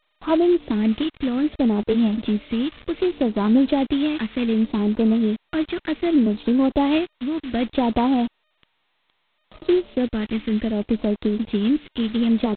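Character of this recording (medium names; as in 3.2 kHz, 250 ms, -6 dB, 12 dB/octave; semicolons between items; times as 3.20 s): a quantiser's noise floor 6-bit, dither none; phasing stages 2, 0.65 Hz, lowest notch 740–2000 Hz; G.726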